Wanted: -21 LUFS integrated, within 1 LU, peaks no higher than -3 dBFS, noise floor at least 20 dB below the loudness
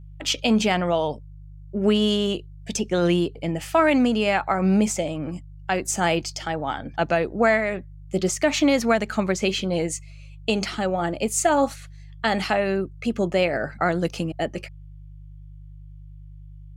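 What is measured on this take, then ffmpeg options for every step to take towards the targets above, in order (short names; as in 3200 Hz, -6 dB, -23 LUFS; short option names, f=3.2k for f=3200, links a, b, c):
hum 50 Hz; harmonics up to 150 Hz; hum level -39 dBFS; loudness -23.5 LUFS; peak -9.0 dBFS; loudness target -21.0 LUFS
-> -af "bandreject=f=50:t=h:w=4,bandreject=f=100:t=h:w=4,bandreject=f=150:t=h:w=4"
-af "volume=2.5dB"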